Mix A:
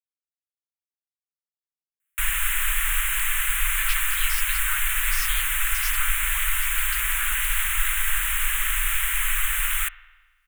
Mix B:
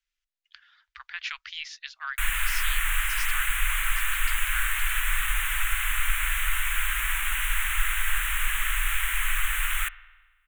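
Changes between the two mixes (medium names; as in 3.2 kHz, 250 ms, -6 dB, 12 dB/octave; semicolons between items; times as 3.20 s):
speech: entry -2.65 s; master: add treble shelf 5.6 kHz -8 dB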